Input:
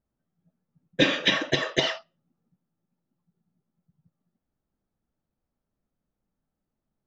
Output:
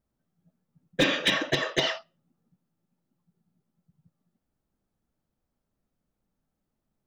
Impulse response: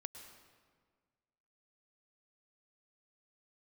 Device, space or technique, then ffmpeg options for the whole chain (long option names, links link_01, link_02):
limiter into clipper: -af "alimiter=limit=-11.5dB:level=0:latency=1:release=304,asoftclip=type=hard:threshold=-17.5dB,volume=2dB"